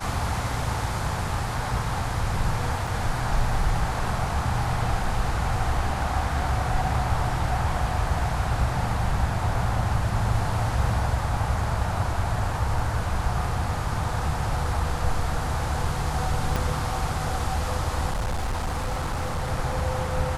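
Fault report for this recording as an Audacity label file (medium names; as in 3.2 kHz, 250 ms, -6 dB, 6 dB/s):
2.870000	2.870000	dropout 3.1 ms
16.560000	16.560000	pop
18.110000	19.490000	clipped -23 dBFS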